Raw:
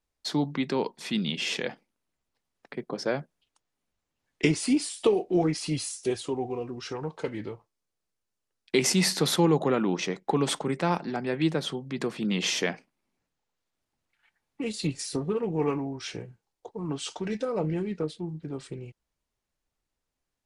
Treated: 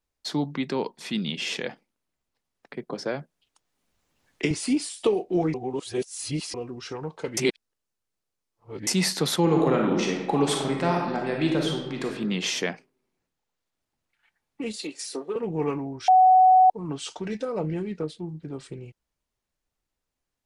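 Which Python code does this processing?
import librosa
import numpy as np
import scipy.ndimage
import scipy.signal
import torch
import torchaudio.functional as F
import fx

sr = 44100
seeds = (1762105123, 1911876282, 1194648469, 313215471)

y = fx.band_squash(x, sr, depth_pct=40, at=(2.9, 4.51))
y = fx.reverb_throw(y, sr, start_s=9.41, length_s=2.64, rt60_s=1.1, drr_db=0.0)
y = fx.highpass(y, sr, hz=310.0, slope=24, at=(14.76, 15.36))
y = fx.edit(y, sr, fx.reverse_span(start_s=5.54, length_s=1.0),
    fx.reverse_span(start_s=7.37, length_s=1.5),
    fx.bleep(start_s=16.08, length_s=0.62, hz=746.0, db=-12.0), tone=tone)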